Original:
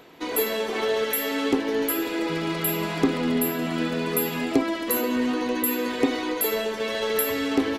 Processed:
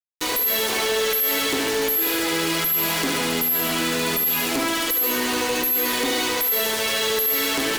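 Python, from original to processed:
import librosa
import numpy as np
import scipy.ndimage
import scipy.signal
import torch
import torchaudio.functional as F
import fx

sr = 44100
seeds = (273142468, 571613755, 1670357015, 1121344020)

y = fx.riaa(x, sr, side='recording')
y = fx.hum_notches(y, sr, base_hz=50, count=5)
y = fx.fuzz(y, sr, gain_db=37.0, gate_db=-31.0)
y = fx.echo_feedback(y, sr, ms=73, feedback_pct=47, wet_db=-6.0)
y = fx.env_flatten(y, sr, amount_pct=50)
y = F.gain(torch.from_numpy(y), -9.0).numpy()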